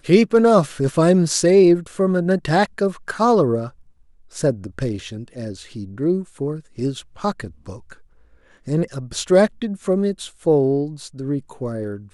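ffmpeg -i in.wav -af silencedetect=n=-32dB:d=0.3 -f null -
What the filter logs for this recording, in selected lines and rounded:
silence_start: 3.69
silence_end: 4.35 | silence_duration: 0.66
silence_start: 7.93
silence_end: 8.67 | silence_duration: 0.75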